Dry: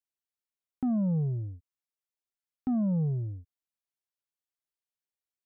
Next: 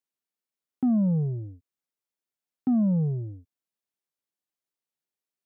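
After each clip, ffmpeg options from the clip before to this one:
-af "highpass=210,lowshelf=f=320:g=11.5"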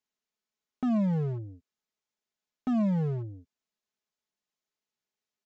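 -af "aresample=16000,volume=29dB,asoftclip=hard,volume=-29dB,aresample=44100,aecho=1:1:4.7:0.45,volume=2dB"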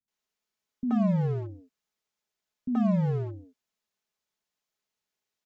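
-filter_complex "[0:a]acrossover=split=240|630|1800[a][b][c][d];[d]alimiter=level_in=28.5dB:limit=-24dB:level=0:latency=1,volume=-28.5dB[e];[a][b][c][e]amix=inputs=4:normalize=0,acrossover=split=260[f][g];[g]adelay=80[h];[f][h]amix=inputs=2:normalize=0,volume=3.5dB"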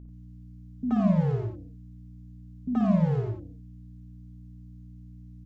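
-af "aeval=exprs='val(0)+0.00631*(sin(2*PI*60*n/s)+sin(2*PI*2*60*n/s)/2+sin(2*PI*3*60*n/s)/3+sin(2*PI*4*60*n/s)/4+sin(2*PI*5*60*n/s)/5)':c=same,aecho=1:1:55.39|90.38:0.501|0.501"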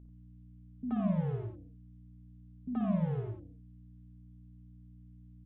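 -af "aresample=8000,aresample=44100,volume=-8dB"

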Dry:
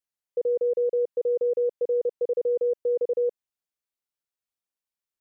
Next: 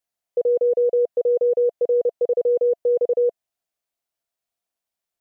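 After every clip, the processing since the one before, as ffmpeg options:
-af "equalizer=f=680:w=5.4:g=12,volume=4.5dB"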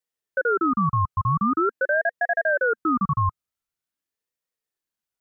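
-af "aeval=exprs='val(0)*sin(2*PI*880*n/s+880*0.35/0.45*sin(2*PI*0.45*n/s))':c=same"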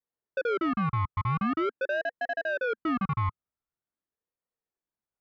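-af "lowpass=1.2k,adynamicequalizer=threshold=0.0126:dfrequency=650:dqfactor=1.8:tfrequency=650:tqfactor=1.8:attack=5:release=100:ratio=0.375:range=3.5:mode=cutabove:tftype=bell,asoftclip=type=tanh:threshold=-23dB"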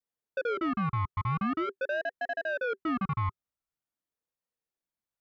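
-af "bandreject=f=390:w=12,volume=-2dB"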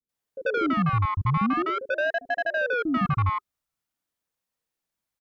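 -filter_complex "[0:a]acrossover=split=420[a][b];[b]adelay=90[c];[a][c]amix=inputs=2:normalize=0,volume=7dB"

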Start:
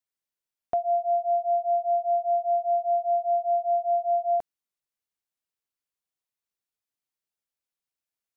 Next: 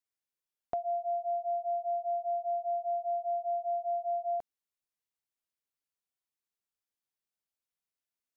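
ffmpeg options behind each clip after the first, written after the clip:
-af "acompressor=threshold=-28dB:ratio=2.5,volume=-4dB"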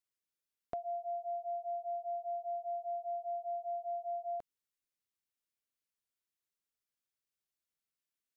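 -af "equalizer=f=800:w=2:g=-7,volume=-1dB"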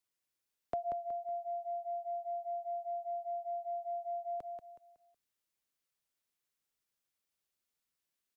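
-filter_complex "[0:a]aecho=1:1:185|370|555|740:0.473|0.161|0.0547|0.0186,acrossover=split=140|560[a][b][c];[a]acrusher=samples=28:mix=1:aa=0.000001:lfo=1:lforange=44.8:lforate=0.7[d];[d][b][c]amix=inputs=3:normalize=0,volume=3dB"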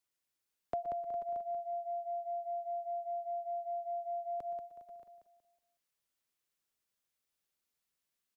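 -af "aecho=1:1:117|123|407|484|489|627:0.106|0.168|0.178|0.119|0.126|0.188"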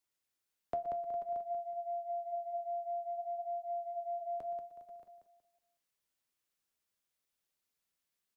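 -af "flanger=delay=9.1:depth=4.3:regen=-71:speed=0.53:shape=sinusoidal,volume=4dB"

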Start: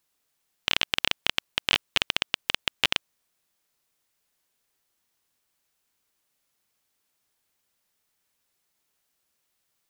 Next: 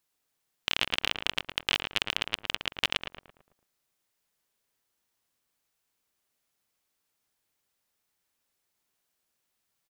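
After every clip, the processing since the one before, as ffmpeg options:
-filter_complex "[0:a]asplit=2[a][b];[b]adelay=111,lowpass=f=1.7k:p=1,volume=-4dB,asplit=2[c][d];[d]adelay=111,lowpass=f=1.7k:p=1,volume=0.49,asplit=2[e][f];[f]adelay=111,lowpass=f=1.7k:p=1,volume=0.49,asplit=2[g][h];[h]adelay=111,lowpass=f=1.7k:p=1,volume=0.49,asplit=2[i][j];[j]adelay=111,lowpass=f=1.7k:p=1,volume=0.49,asplit=2[k][l];[l]adelay=111,lowpass=f=1.7k:p=1,volume=0.49[m];[a][c][e][g][i][k][m]amix=inputs=7:normalize=0,volume=-4dB"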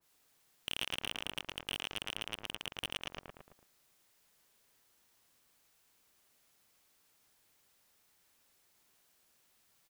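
-af "alimiter=limit=-13.5dB:level=0:latency=1:release=152,aeval=exprs='(tanh(44.7*val(0)+0.35)-tanh(0.35))/44.7':c=same,adynamicequalizer=threshold=0.001:dfrequency=1800:dqfactor=0.7:tfrequency=1800:tqfactor=0.7:attack=5:release=100:ratio=0.375:range=1.5:mode=cutabove:tftype=highshelf,volume=9.5dB"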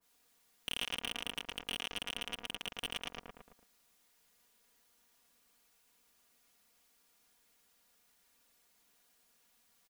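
-af "aecho=1:1:4.2:0.65,volume=-1.5dB"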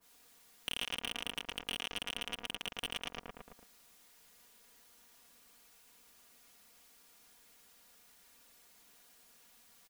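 -af "acompressor=threshold=-56dB:ratio=1.5,volume=8dB"

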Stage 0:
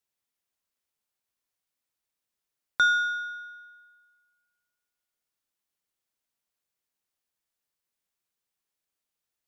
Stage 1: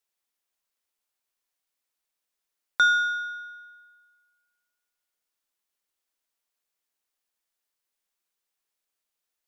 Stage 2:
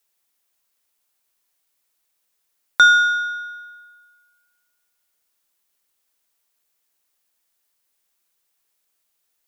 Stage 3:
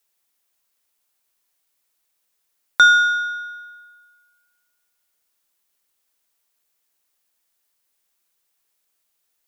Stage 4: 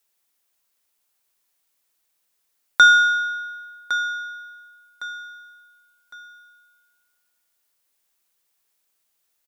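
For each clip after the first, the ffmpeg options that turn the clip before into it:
-af "equalizer=f=110:w=0.75:g=-13,volume=2dB"
-af "crystalizer=i=0.5:c=0,volume=8dB"
-af anull
-af "aecho=1:1:1109|2218|3327:0.251|0.0829|0.0274"

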